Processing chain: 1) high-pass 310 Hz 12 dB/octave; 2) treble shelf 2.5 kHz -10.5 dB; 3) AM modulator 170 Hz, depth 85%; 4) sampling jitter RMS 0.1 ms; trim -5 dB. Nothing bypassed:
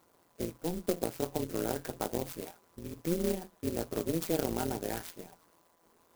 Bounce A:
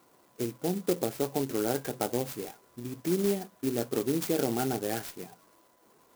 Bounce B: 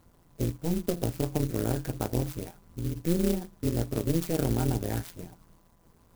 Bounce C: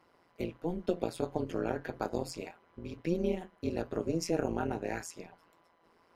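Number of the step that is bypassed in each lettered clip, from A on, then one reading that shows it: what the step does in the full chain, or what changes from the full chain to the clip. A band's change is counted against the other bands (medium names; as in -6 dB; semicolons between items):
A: 3, crest factor change -4.0 dB; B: 1, 125 Hz band +10.0 dB; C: 4, 8 kHz band -5.0 dB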